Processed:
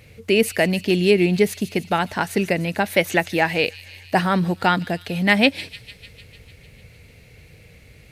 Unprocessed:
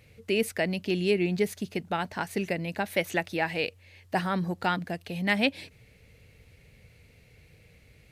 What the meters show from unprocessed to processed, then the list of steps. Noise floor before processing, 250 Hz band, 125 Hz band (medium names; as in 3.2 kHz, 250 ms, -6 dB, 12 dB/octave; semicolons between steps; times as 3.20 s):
-58 dBFS, +9.0 dB, +9.0 dB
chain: feedback echo behind a high-pass 150 ms, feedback 71%, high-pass 3.7 kHz, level -12 dB; trim +9 dB